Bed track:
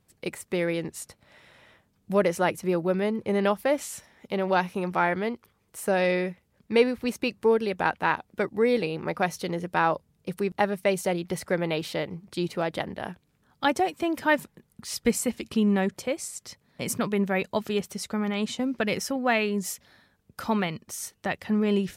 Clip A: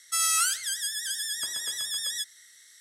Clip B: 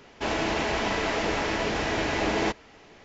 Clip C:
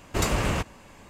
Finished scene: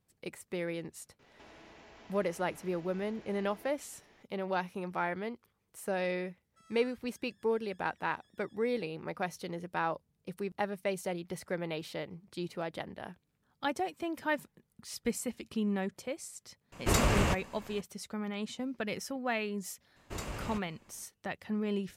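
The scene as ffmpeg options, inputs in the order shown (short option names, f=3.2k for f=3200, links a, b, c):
-filter_complex "[3:a]asplit=2[a][b];[0:a]volume=-9.5dB[c];[2:a]acompressor=threshold=-41dB:ratio=6:attack=3.2:release=140:knee=1:detection=peak[d];[1:a]bandpass=f=200:t=q:w=0.99:csg=0[e];[a]acontrast=50[f];[d]atrim=end=3.04,asetpts=PTS-STARTPTS,volume=-12.5dB,afade=t=in:d=0.004:c=hsin,afade=t=out:st=3.036:d=0.004:c=hsin,adelay=1190[g];[e]atrim=end=2.8,asetpts=PTS-STARTPTS,volume=-14.5dB,afade=t=in:d=0.004:c=hsin,afade=t=out:st=2.796:d=0.004:c=hsin,adelay=6440[h];[f]atrim=end=1.09,asetpts=PTS-STARTPTS,volume=-8dB,afade=t=in:d=0.004:c=hsin,afade=t=out:st=1.086:d=0.004:c=hsin,adelay=16720[i];[b]atrim=end=1.09,asetpts=PTS-STARTPTS,volume=-15dB,afade=t=in:d=0.004:c=hsin,afade=t=out:st=1.086:d=0.004:c=hsin,adelay=19960[j];[c][g][h][i][j]amix=inputs=5:normalize=0"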